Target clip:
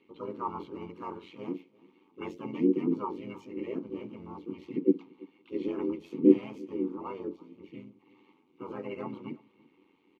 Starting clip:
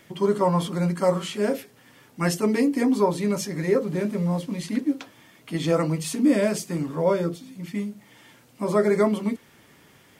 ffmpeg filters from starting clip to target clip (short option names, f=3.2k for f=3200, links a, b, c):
-filter_complex "[0:a]asplit=3[a][b][c];[a]bandpass=f=300:t=q:w=8,volume=0dB[d];[b]bandpass=f=870:t=q:w=8,volume=-6dB[e];[c]bandpass=f=2.24k:t=q:w=8,volume=-9dB[f];[d][e][f]amix=inputs=3:normalize=0,aecho=1:1:3.2:0.4,tremolo=f=91:d=0.788,asplit=2[g][h];[h]asetrate=55563,aresample=44100,atempo=0.793701,volume=-3dB[i];[g][i]amix=inputs=2:normalize=0,equalizer=f=8.9k:t=o:w=0.54:g=-11.5,bandreject=f=5.2k:w=16,asplit=2[j][k];[k]aecho=0:1:336:0.0668[l];[j][l]amix=inputs=2:normalize=0"